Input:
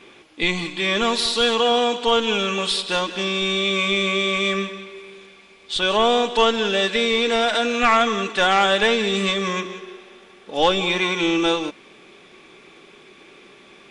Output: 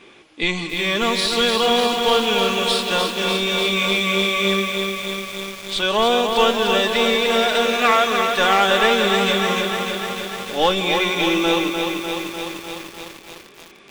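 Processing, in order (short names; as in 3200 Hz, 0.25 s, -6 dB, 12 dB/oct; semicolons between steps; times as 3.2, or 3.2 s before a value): 7.15–8.3 HPF 280 Hz 12 dB/oct; lo-fi delay 0.299 s, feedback 80%, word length 6-bit, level -5 dB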